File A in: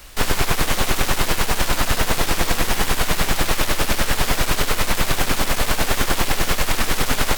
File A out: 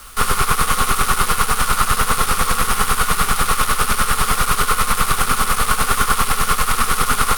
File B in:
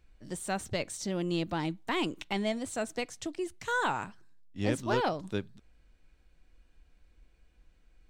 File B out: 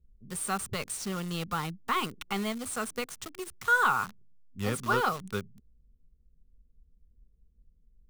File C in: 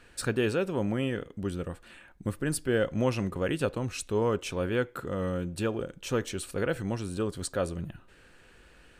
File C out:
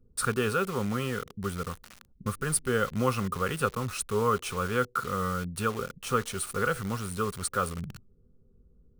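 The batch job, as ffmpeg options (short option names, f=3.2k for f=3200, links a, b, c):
-filter_complex "[0:a]superequalizer=6b=0.282:8b=0.447:10b=3.55:16b=2.51,acrossover=split=400[a][b];[b]acrusher=bits=6:mix=0:aa=0.000001[c];[a][c]amix=inputs=2:normalize=0"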